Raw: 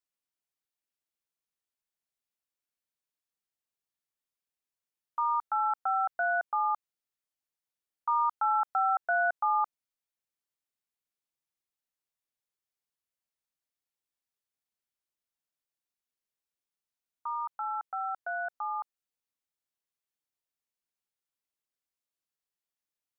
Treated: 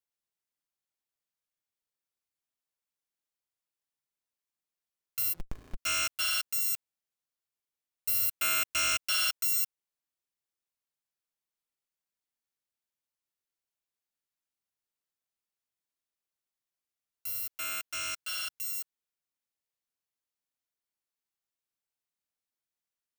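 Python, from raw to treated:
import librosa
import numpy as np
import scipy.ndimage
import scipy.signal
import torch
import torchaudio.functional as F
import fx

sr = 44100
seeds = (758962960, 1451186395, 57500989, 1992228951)

y = fx.bit_reversed(x, sr, seeds[0], block=256)
y = fx.running_max(y, sr, window=65, at=(5.32, 5.75), fade=0.02)
y = y * 10.0 ** (-1.5 / 20.0)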